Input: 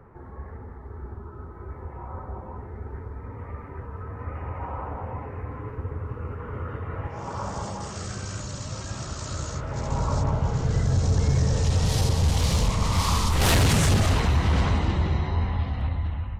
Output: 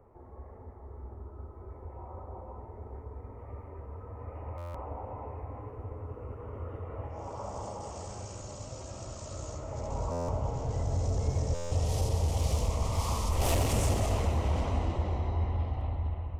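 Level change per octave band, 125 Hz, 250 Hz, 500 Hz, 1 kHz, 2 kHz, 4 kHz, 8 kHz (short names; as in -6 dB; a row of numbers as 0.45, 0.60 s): -8.0, -10.0, -3.5, -7.0, -13.5, -12.0, -8.0 dB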